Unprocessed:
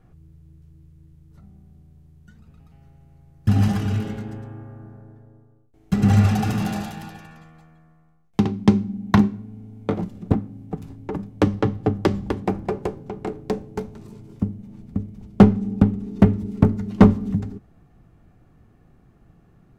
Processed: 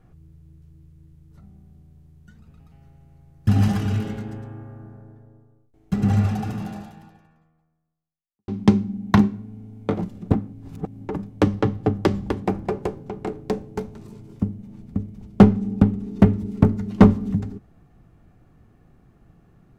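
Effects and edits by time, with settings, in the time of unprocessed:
0:04.68–0:08.48: fade out and dull
0:10.53–0:11.05: reverse

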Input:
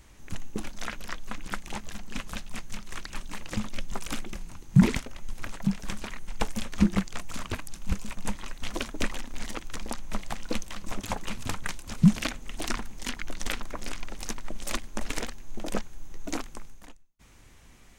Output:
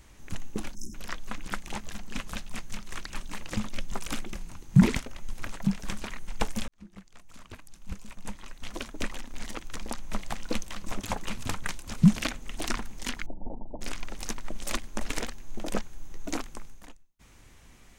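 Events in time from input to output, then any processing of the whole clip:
0:00.75–0:00.95: time-frequency box erased 390–5,100 Hz
0:06.68–0:10.27: fade in
0:13.26–0:13.81: Chebyshev low-pass with heavy ripple 920 Hz, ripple 3 dB

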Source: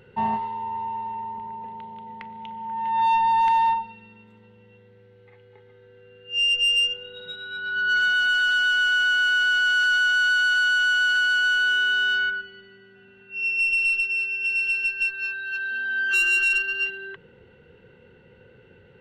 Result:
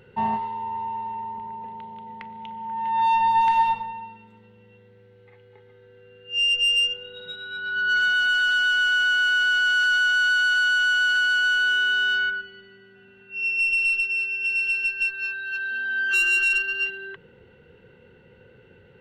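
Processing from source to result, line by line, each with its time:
0:03.14–0:03.77: thrown reverb, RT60 0.83 s, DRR 4 dB

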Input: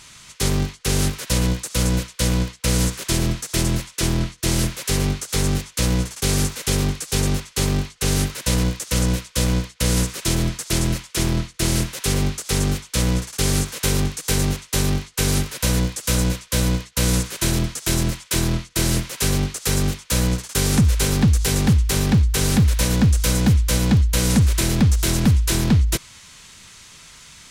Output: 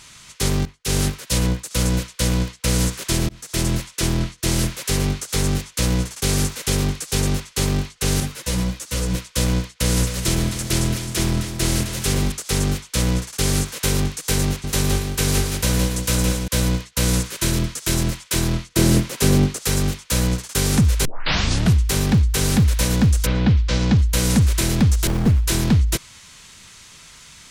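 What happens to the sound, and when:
0:00.65–0:01.71: multiband upward and downward expander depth 100%
0:03.29–0:03.73: fade in equal-power
0:08.20–0:09.15: string-ensemble chorus
0:09.77–0:12.32: echo with a time of its own for lows and highs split 360 Hz, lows 179 ms, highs 262 ms, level −9.5 dB
0:14.47–0:16.48: repeating echo 166 ms, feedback 17%, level −5.5 dB
0:17.30–0:17.94: notch filter 750 Hz, Q 6.3
0:18.74–0:19.63: parametric band 260 Hz +8 dB 2.7 octaves
0:21.05: tape start 0.73 s
0:23.25–0:23.97: low-pass filter 3,300 Hz → 7,100 Hz 24 dB per octave
0:25.07–0:25.47: windowed peak hold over 33 samples

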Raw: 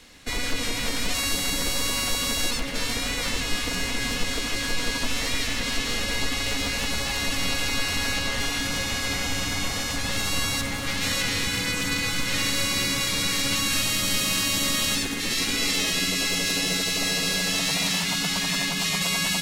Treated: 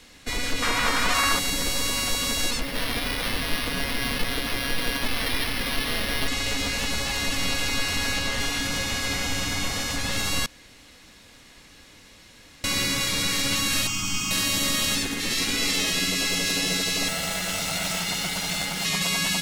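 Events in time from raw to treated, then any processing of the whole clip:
0:00.62–0:01.39: parametric band 1,200 Hz +14.5 dB 1.4 octaves
0:02.61–0:06.28: bad sample-rate conversion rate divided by 6×, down none, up hold
0:10.46–0:12.64: fill with room tone
0:13.87–0:14.31: phaser with its sweep stopped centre 2,700 Hz, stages 8
0:17.08–0:18.85: lower of the sound and its delayed copy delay 1.4 ms

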